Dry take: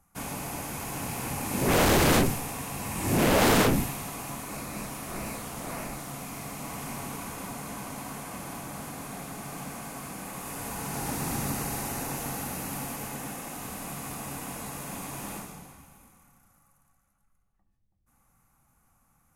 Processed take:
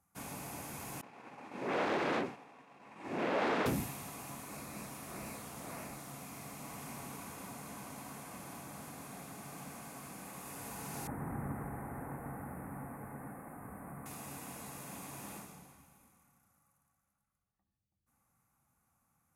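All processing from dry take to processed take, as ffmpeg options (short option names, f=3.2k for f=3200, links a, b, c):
-filter_complex "[0:a]asettb=1/sr,asplit=3[a][b][c];[a]atrim=end=1.014[d];[b]atrim=start=1.01:end=3.66,asetpts=PTS-STARTPTS,afade=t=in:d=0.004:c=qsin,afade=t=out:st=2.646:d=0.004:c=qsin,highpass=290,lowpass=2.6k,agate=range=-33dB:threshold=-33dB:ratio=3:release=100:detection=peak[e];[c]atrim=start=3.656[f];[d][e]acrossfade=d=0.004:c1=hsin:c2=qsin[g];[g][f]acrossfade=d=0.004:c1=qsin:c2=hsin,asettb=1/sr,asplit=3[h][i][j];[h]atrim=end=11.074[k];[i]atrim=start=11.07:end=14.06,asetpts=PTS-STARTPTS,afade=t=in:d=0.004:c=qsin,afade=t=out:st=2.986:d=0.004:c=qsin,acrossover=split=3400[l][m];[m]acompressor=threshold=-51dB:ratio=4:attack=1:release=60[n];[l][n]amix=inputs=2:normalize=0,asuperstop=centerf=4300:order=8:qfactor=0.63,lowshelf=f=94:g=8.5[o];[j]atrim=start=14.056[p];[k][o]acrossfade=d=0.004:c1=hsin:c2=qsin[q];[q][p]acrossfade=d=0.004:c1=qsin:c2=hsin,highpass=69,bandreject=f=3k:w=28,volume=-9dB"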